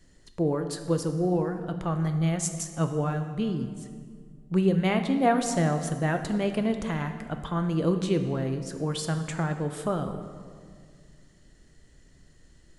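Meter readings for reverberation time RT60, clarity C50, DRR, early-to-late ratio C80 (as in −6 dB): 2.0 s, 8.5 dB, 7.0 dB, 10.0 dB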